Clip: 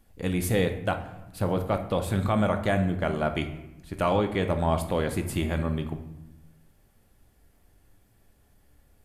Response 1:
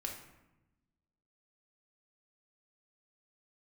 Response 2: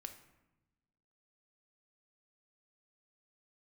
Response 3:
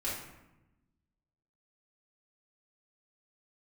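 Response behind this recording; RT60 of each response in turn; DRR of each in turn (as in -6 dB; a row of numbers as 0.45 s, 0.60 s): 2; 0.95 s, 1.0 s, 0.95 s; 0.0 dB, 6.0 dB, -8.5 dB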